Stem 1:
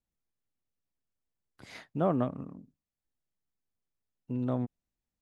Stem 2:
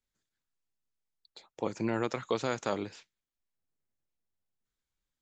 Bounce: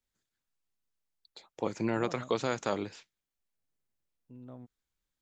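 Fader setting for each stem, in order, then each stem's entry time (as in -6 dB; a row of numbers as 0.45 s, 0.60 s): -17.0 dB, +0.5 dB; 0.00 s, 0.00 s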